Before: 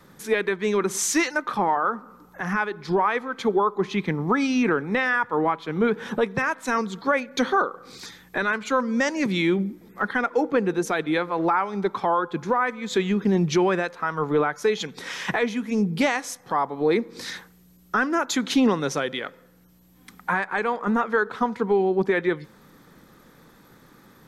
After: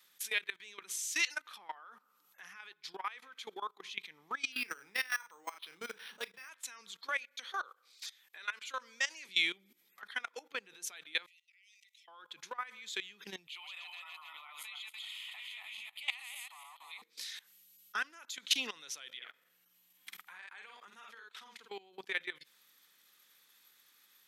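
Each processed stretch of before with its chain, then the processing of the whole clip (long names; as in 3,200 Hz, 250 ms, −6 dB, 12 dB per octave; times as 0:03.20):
0:04.52–0:06.49: double-tracking delay 35 ms −8 dB + linearly interpolated sample-rate reduction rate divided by 6×
0:07.09–0:09.29: high-pass filter 340 Hz + one half of a high-frequency compander decoder only
0:11.26–0:12.08: compressor whose output falls as the input rises −28 dBFS + Chebyshev high-pass with heavy ripple 1,900 Hz, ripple 9 dB
0:13.47–0:17.02: feedback delay that plays each chunk backwards 144 ms, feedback 52%, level −1.5 dB + high-pass filter 860 Hz + phaser with its sweep stopped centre 1,600 Hz, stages 6
0:19.17–0:21.70: square-wave tremolo 4.1 Hz, depth 60%, duty 10% + double-tracking delay 49 ms −5 dB + multiband upward and downward compressor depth 70%
whole clip: parametric band 2,900 Hz +11 dB 1.2 octaves; output level in coarse steps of 19 dB; first difference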